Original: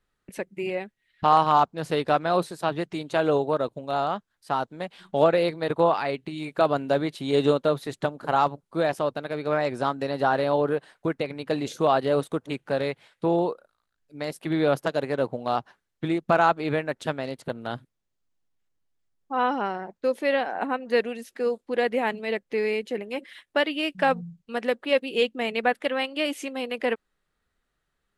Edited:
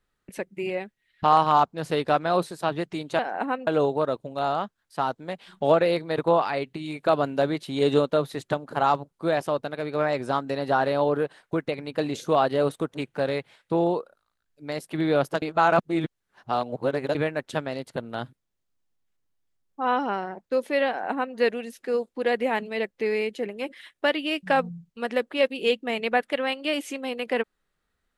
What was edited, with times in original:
14.94–16.67 s: reverse
20.40–20.88 s: copy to 3.19 s

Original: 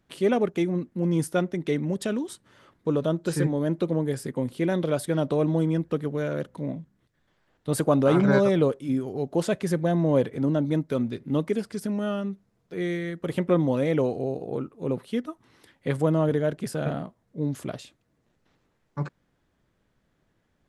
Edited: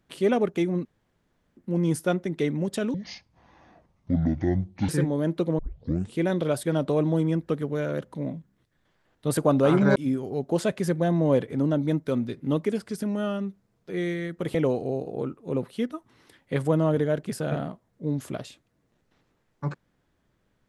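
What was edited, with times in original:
0.85 s: insert room tone 0.72 s
2.22–3.31 s: speed 56%
4.01 s: tape start 0.57 s
8.38–8.79 s: delete
13.38–13.89 s: delete

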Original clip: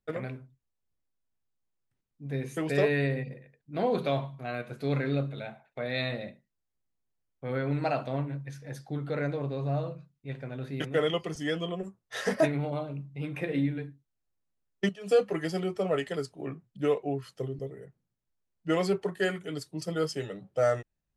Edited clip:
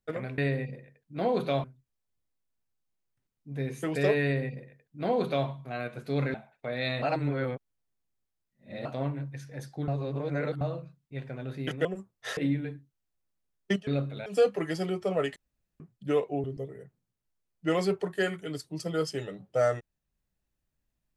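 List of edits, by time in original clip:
2.96–4.22 s: copy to 0.38 s
5.08–5.47 s: move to 15.00 s
6.15–7.98 s: reverse
9.01–9.74 s: reverse
10.98–11.73 s: delete
12.25–13.50 s: delete
16.10–16.54 s: room tone
17.18–17.46 s: delete

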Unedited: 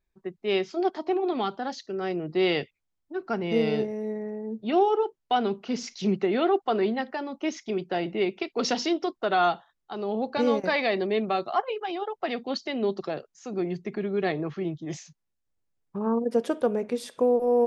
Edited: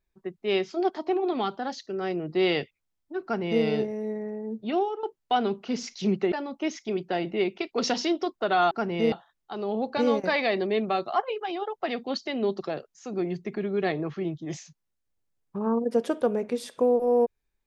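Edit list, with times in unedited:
3.23–3.64 s: copy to 9.52 s
4.60–5.03 s: fade out, to -15.5 dB
6.32–7.13 s: delete

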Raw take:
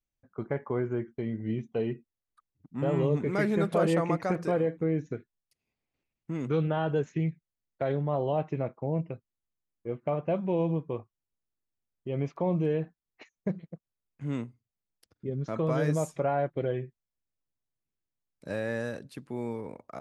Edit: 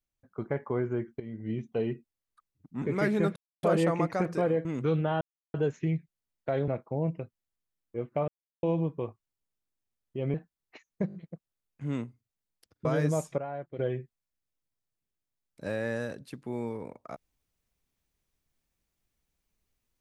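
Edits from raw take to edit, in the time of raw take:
1.20–1.79 s: fade in equal-power, from -12.5 dB
2.82–3.19 s: delete
3.73 s: insert silence 0.27 s
4.75–6.31 s: delete
6.87 s: insert silence 0.33 s
8.01–8.59 s: delete
10.19–10.54 s: mute
12.25–12.80 s: delete
13.54 s: stutter 0.02 s, 4 plays
15.25–15.69 s: delete
16.22–16.63 s: gain -9.5 dB

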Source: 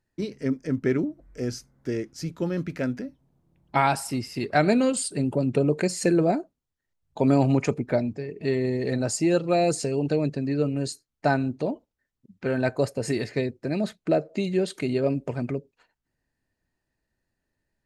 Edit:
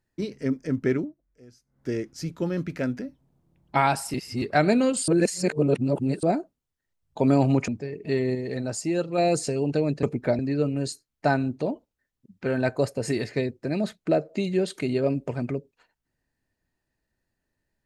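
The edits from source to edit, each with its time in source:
0.93–1.89 s: dip -21.5 dB, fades 0.24 s
4.14–4.42 s: reverse
5.08–6.23 s: reverse
7.68–8.04 s: move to 10.39 s
8.71–9.54 s: gain -4 dB

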